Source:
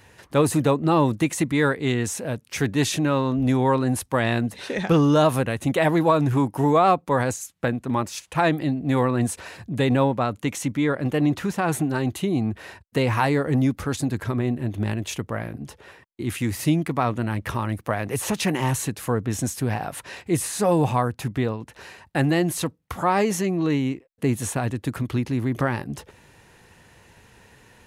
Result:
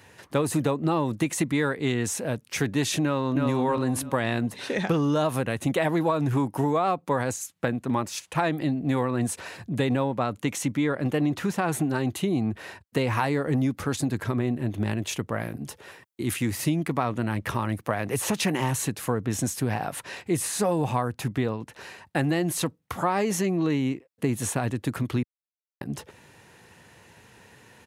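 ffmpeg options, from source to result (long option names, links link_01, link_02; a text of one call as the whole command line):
ffmpeg -i in.wav -filter_complex "[0:a]asplit=2[link_01][link_02];[link_02]afade=type=in:start_time=3.03:duration=0.01,afade=type=out:start_time=3.45:duration=0.01,aecho=0:1:320|640|960|1280:0.707946|0.212384|0.0637151|0.0191145[link_03];[link_01][link_03]amix=inputs=2:normalize=0,asettb=1/sr,asplit=3[link_04][link_05][link_06];[link_04]atrim=end=15.394[link_07];[link_05]atrim=start=15.39:end=16.34,asetpts=PTS-STARTPTS,afade=type=in:duration=0.004:curve=qsin,afade=type=out:start_time=0.946:duration=0.004:curve=qsin,highshelf=frequency=5800:gain=8.5[link_08];[link_06]atrim=start=16.336[link_09];[link_07][link_08]acrossfade=duration=0.004:curve1=hsin:curve2=qsin[link_10];[link_10][link_09]acrossfade=duration=0.004:curve1=qsin:curve2=hsin,asplit=3[link_11][link_12][link_13];[link_11]atrim=end=25.23,asetpts=PTS-STARTPTS,afade=type=out:start_time=25.226:duration=0.004:curve=hsin[link_14];[link_12]atrim=start=25.23:end=25.81,asetpts=PTS-STARTPTS,volume=0[link_15];[link_13]atrim=start=25.81,asetpts=PTS-STARTPTS,afade=type=in:duration=0.004:curve=hsin[link_16];[link_14][link_15][link_16]concat=n=3:v=0:a=1,highpass=94,acompressor=threshold=-20dB:ratio=6" out.wav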